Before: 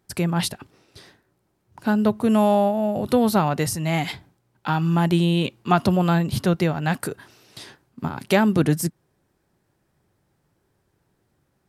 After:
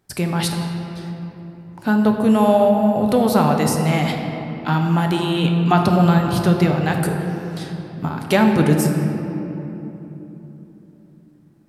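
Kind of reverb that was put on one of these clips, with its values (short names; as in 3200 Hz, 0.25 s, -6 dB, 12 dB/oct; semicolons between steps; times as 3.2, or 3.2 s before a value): shoebox room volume 200 m³, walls hard, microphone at 0.36 m; gain +1.5 dB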